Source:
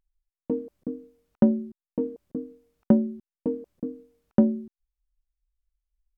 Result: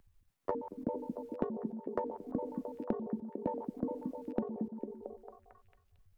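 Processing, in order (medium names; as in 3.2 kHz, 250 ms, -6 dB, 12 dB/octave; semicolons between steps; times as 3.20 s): pitch shift switched off and on +11.5 st, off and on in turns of 68 ms; compression 16:1, threshold -35 dBFS, peak gain reduction 22.5 dB; repeats whose band climbs or falls 225 ms, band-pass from 220 Hz, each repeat 0.7 oct, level -3.5 dB; three bands compressed up and down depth 40%; trim +4 dB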